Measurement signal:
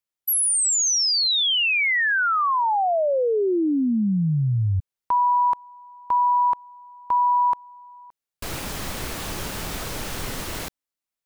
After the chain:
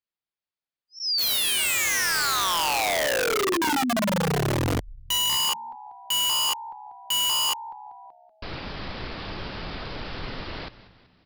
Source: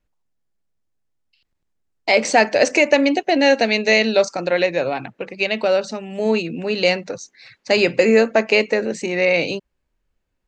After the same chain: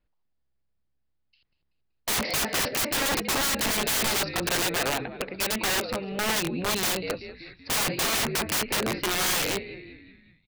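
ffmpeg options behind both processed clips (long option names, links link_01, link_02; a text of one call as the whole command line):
ffmpeg -i in.wav -filter_complex "[0:a]asplit=6[link_01][link_02][link_03][link_04][link_05][link_06];[link_02]adelay=190,afreqshift=-67,volume=-16.5dB[link_07];[link_03]adelay=380,afreqshift=-134,volume=-22.3dB[link_08];[link_04]adelay=570,afreqshift=-201,volume=-28.2dB[link_09];[link_05]adelay=760,afreqshift=-268,volume=-34dB[link_10];[link_06]adelay=950,afreqshift=-335,volume=-39.9dB[link_11];[link_01][link_07][link_08][link_09][link_10][link_11]amix=inputs=6:normalize=0,aresample=11025,aresample=44100,aeval=exprs='(mod(7.5*val(0)+1,2)-1)/7.5':channel_layout=same,volume=-3dB" out.wav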